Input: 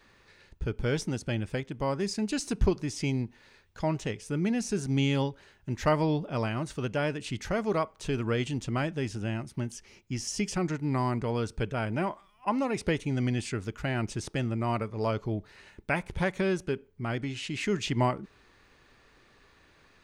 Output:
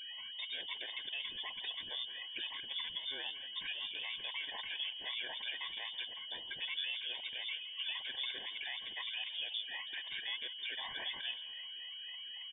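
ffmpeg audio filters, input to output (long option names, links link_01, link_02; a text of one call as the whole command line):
ffmpeg -i in.wav -filter_complex "[0:a]afftfilt=real='re*pow(10,19/40*sin(2*PI*(1.4*log(max(b,1)*sr/1024/100)/log(2)-(-2.4)*(pts-256)/sr)))':imag='im*pow(10,19/40*sin(2*PI*(1.4*log(max(b,1)*sr/1024/100)/log(2)-(-2.4)*(pts-256)/sr)))':win_size=1024:overlap=0.75,aemphasis=mode=production:type=riaa,afftdn=noise_reduction=22:noise_floor=-50,equalizer=frequency=1500:width_type=o:width=1.1:gain=7.5,acompressor=threshold=-34dB:ratio=6,alimiter=level_in=6dB:limit=-24dB:level=0:latency=1:release=11,volume=-6dB,atempo=1.6,aeval=exprs='val(0)+0.00708*sin(2*PI*740*n/s)':channel_layout=same,asplit=2[link_01][link_02];[link_02]asetrate=29433,aresample=44100,atempo=1.49831,volume=-4dB[link_03];[link_01][link_03]amix=inputs=2:normalize=0,asplit=6[link_04][link_05][link_06][link_07][link_08][link_09];[link_05]adelay=165,afreqshift=74,volume=-16dB[link_10];[link_06]adelay=330,afreqshift=148,volume=-21dB[link_11];[link_07]adelay=495,afreqshift=222,volume=-26.1dB[link_12];[link_08]adelay=660,afreqshift=296,volume=-31.1dB[link_13];[link_09]adelay=825,afreqshift=370,volume=-36.1dB[link_14];[link_04][link_10][link_11][link_12][link_13][link_14]amix=inputs=6:normalize=0,lowpass=frequency=3100:width_type=q:width=0.5098,lowpass=frequency=3100:width_type=q:width=0.6013,lowpass=frequency=3100:width_type=q:width=0.9,lowpass=frequency=3100:width_type=q:width=2.563,afreqshift=-3700,asuperstop=centerf=1300:order=12:qfactor=3.2,volume=-3dB" out.wav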